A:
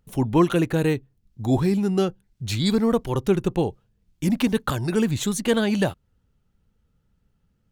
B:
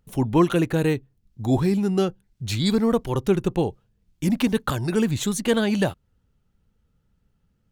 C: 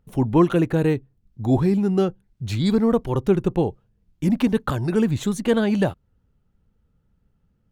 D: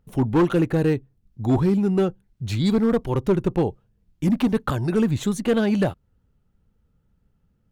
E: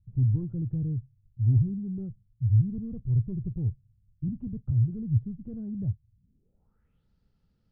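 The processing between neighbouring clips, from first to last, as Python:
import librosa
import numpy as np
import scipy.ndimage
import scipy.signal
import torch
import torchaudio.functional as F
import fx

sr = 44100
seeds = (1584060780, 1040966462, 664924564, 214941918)

y1 = x
y2 = fx.high_shelf(y1, sr, hz=2300.0, db=-9.5)
y2 = F.gain(torch.from_numpy(y2), 2.0).numpy()
y3 = np.clip(y2, -10.0 ** (-13.0 / 20.0), 10.0 ** (-13.0 / 20.0))
y4 = fx.filter_sweep_lowpass(y3, sr, from_hz=110.0, to_hz=4700.0, start_s=6.12, end_s=7.07, q=3.9)
y4 = F.gain(torch.from_numpy(y4), -5.0).numpy()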